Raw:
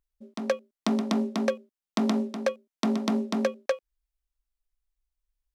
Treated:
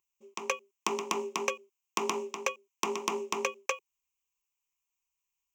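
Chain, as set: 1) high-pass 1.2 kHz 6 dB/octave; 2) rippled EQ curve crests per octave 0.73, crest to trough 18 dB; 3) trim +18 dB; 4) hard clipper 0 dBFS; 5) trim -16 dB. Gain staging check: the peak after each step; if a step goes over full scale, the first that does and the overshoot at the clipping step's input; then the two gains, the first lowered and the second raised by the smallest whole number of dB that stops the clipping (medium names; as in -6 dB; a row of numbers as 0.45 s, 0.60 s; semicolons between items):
-12.5 dBFS, -10.5 dBFS, +7.5 dBFS, 0.0 dBFS, -16.0 dBFS; step 3, 7.5 dB; step 3 +10 dB, step 5 -8 dB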